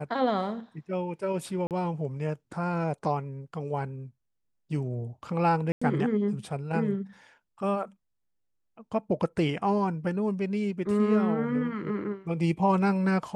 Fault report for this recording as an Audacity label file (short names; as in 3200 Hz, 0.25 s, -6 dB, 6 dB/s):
1.670000	1.710000	gap 38 ms
5.720000	5.820000	gap 95 ms